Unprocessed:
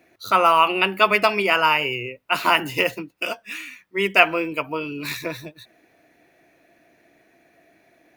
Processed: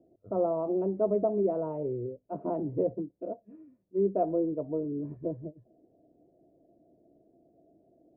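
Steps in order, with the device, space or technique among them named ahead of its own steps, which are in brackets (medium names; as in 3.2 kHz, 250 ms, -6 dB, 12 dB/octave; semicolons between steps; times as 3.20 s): under water (low-pass 470 Hz 24 dB/octave; peaking EQ 650 Hz +8 dB 0.51 oct); trim -2 dB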